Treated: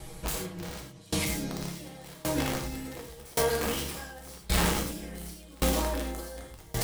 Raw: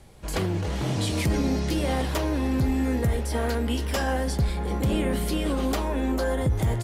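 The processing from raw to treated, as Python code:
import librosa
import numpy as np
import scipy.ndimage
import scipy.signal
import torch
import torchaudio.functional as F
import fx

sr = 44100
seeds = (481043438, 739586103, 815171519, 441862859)

y = fx.high_shelf(x, sr, hz=6900.0, db=7.5)
y = y + 0.73 * np.pad(y, (int(6.2 * sr / 1000.0), 0))[:len(y)]
y = fx.over_compress(y, sr, threshold_db=-29.0, ratio=-1.0)
y = (np.mod(10.0 ** (19.5 / 20.0) * y + 1.0, 2.0) - 1.0) / 10.0 ** (19.5 / 20.0)
y = fx.echo_wet_highpass(y, sr, ms=982, feedback_pct=45, hz=3500.0, wet_db=-5.0)
y = fx.rev_gated(y, sr, seeds[0], gate_ms=130, shape='flat', drr_db=-0.5)
y = fx.tremolo_decay(y, sr, direction='decaying', hz=0.89, depth_db=27)
y = y * 10.0 ** (1.0 / 20.0)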